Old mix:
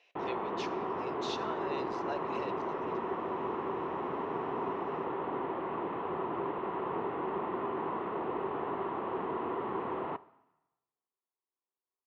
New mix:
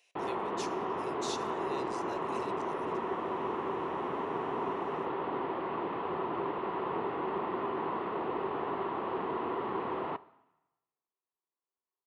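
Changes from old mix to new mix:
speech -7.0 dB; master: remove distance through air 240 m

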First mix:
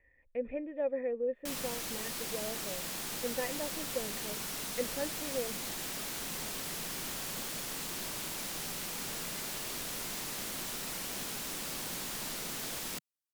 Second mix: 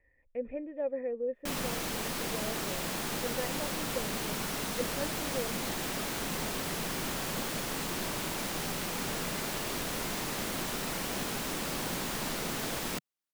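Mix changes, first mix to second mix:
background +9.0 dB; master: add peaking EQ 14 kHz -9 dB 2.8 oct

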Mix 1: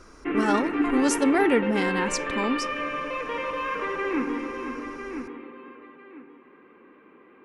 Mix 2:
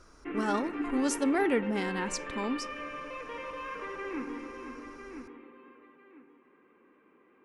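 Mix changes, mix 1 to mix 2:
speech -6.0 dB; background -10.0 dB

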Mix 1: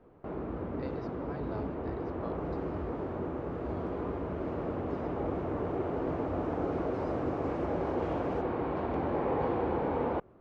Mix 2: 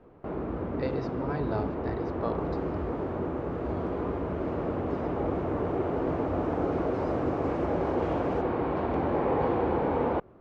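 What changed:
speech +10.0 dB; first sound +4.0 dB; second sound +4.0 dB

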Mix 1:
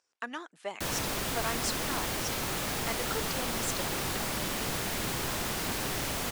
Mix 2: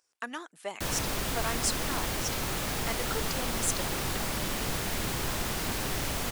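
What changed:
speech: remove distance through air 58 m; master: add bass shelf 74 Hz +8.5 dB

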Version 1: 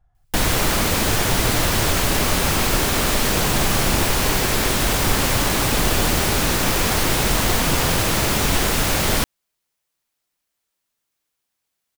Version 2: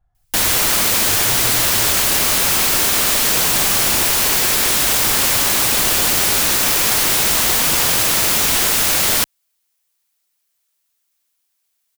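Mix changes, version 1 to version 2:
speech -3.5 dB; background: add tilt EQ +2.5 dB/octave

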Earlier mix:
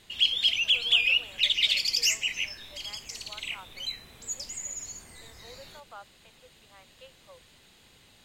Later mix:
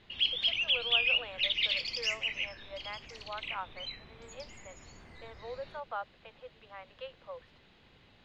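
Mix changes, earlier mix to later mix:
speech +9.5 dB; master: add distance through air 270 m

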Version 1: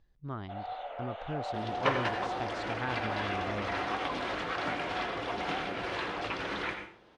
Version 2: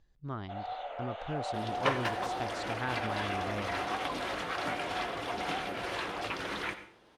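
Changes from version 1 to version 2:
second sound: send -7.0 dB; master: remove distance through air 88 m

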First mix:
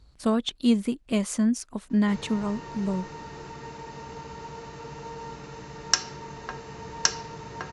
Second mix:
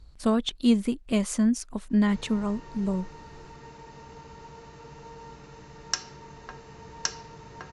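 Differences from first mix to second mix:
background -6.5 dB; master: remove high-pass 71 Hz 6 dB/octave

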